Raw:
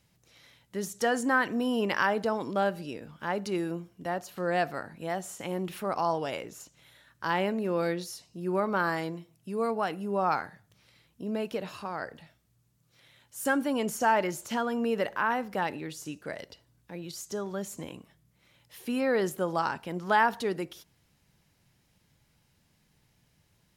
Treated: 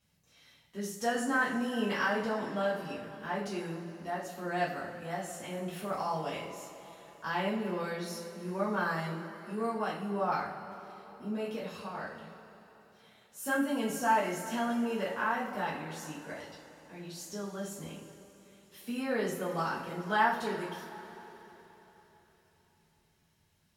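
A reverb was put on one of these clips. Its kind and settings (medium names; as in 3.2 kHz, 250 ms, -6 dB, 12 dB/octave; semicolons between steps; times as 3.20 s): two-slope reverb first 0.41 s, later 3.9 s, from -18 dB, DRR -8 dB; trim -12 dB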